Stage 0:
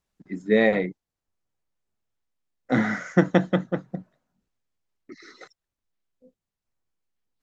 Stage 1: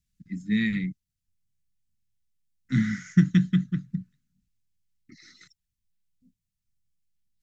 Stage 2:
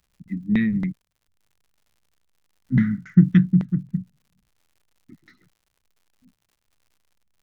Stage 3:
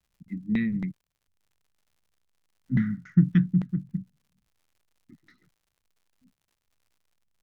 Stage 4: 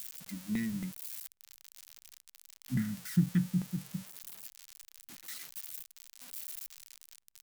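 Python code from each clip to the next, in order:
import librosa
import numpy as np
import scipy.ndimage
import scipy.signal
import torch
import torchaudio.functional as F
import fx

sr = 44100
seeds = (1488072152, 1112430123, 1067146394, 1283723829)

y1 = scipy.signal.sosfilt(scipy.signal.cheby1(2, 1.0, [190.0, 2100.0], 'bandstop', fs=sr, output='sos'), x)
y1 = fx.bass_treble(y1, sr, bass_db=11, treble_db=7)
y1 = y1 * librosa.db_to_amplitude(-4.5)
y2 = fx.filter_lfo_lowpass(y1, sr, shape='saw_down', hz=3.6, low_hz=200.0, high_hz=2800.0, q=0.78)
y2 = fx.dmg_crackle(y2, sr, seeds[0], per_s=140.0, level_db=-57.0)
y2 = y2 * librosa.db_to_amplitude(5.0)
y3 = fx.vibrato(y2, sr, rate_hz=0.55, depth_cents=38.0)
y3 = y3 * librosa.db_to_amplitude(-5.5)
y4 = y3 + 0.5 * 10.0 ** (-23.0 / 20.0) * np.diff(np.sign(y3), prepend=np.sign(y3[:1]))
y4 = y4 * librosa.db_to_amplitude(-8.0)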